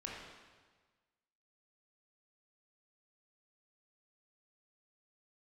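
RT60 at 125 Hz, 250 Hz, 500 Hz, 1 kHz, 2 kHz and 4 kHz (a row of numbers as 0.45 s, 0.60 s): 1.5 s, 1.4 s, 1.4 s, 1.4 s, 1.3 s, 1.3 s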